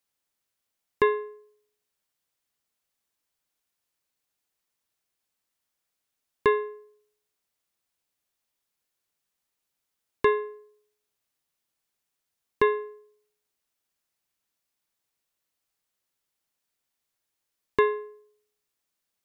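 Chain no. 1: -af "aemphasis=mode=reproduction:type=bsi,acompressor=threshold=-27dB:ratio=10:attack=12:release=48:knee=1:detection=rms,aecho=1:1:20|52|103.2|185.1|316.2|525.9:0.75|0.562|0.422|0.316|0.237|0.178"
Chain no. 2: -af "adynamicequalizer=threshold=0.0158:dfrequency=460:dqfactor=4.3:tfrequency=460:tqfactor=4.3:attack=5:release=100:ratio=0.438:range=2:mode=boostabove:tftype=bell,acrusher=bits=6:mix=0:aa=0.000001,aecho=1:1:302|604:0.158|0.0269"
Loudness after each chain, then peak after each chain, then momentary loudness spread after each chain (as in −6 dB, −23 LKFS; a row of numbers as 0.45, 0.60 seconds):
−36.0, −26.0 LKFS; −11.0, −9.0 dBFS; 17, 15 LU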